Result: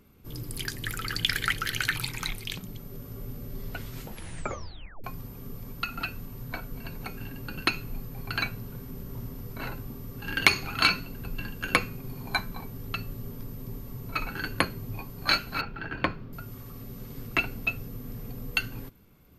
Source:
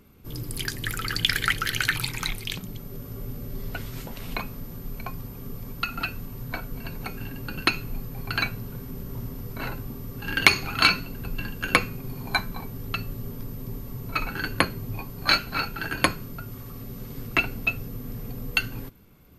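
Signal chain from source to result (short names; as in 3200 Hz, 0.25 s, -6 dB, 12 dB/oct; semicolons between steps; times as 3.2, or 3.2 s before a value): 4.03 tape stop 1.01 s; 15.61–16.33 air absorption 300 m; gain -3.5 dB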